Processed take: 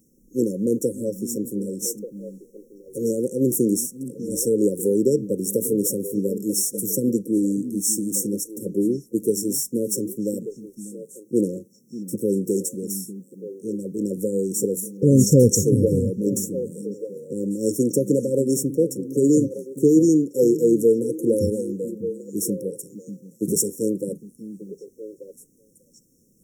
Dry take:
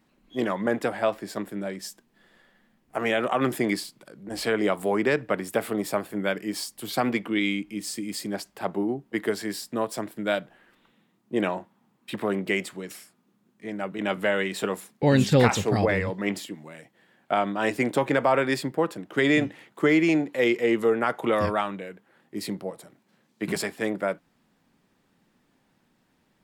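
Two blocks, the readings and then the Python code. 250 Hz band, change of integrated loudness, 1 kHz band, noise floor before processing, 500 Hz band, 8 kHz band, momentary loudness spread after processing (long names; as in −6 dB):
+6.0 dB, +4.0 dB, below −40 dB, −68 dBFS, +4.0 dB, +14.0 dB, 19 LU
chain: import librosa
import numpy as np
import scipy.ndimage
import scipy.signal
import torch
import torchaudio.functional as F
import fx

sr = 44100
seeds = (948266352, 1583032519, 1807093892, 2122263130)

p1 = fx.brickwall_bandstop(x, sr, low_hz=550.0, high_hz=5400.0)
p2 = fx.high_shelf(p1, sr, hz=4300.0, db=11.0)
p3 = p2 + fx.echo_stepped(p2, sr, ms=593, hz=190.0, octaves=1.4, feedback_pct=70, wet_db=-8.0, dry=0)
y = p3 * librosa.db_to_amplitude(5.5)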